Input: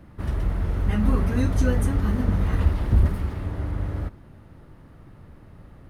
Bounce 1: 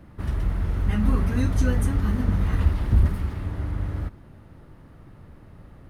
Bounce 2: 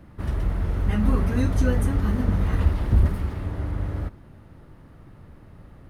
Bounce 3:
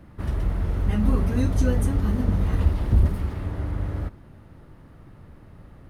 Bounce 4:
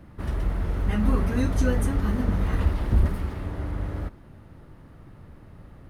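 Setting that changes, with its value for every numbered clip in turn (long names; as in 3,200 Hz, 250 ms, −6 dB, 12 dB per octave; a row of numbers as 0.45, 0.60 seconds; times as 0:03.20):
dynamic equaliser, frequency: 530, 7,000, 1,600, 100 Hertz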